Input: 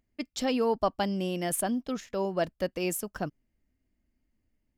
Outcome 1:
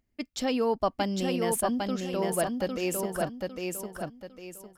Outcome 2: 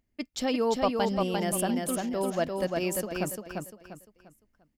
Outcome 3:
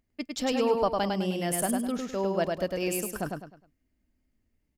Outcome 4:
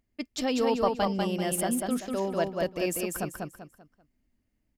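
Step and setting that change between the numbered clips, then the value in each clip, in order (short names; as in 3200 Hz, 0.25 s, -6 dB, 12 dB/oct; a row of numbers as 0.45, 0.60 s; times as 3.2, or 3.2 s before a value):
feedback echo, time: 0.804, 0.347, 0.103, 0.194 s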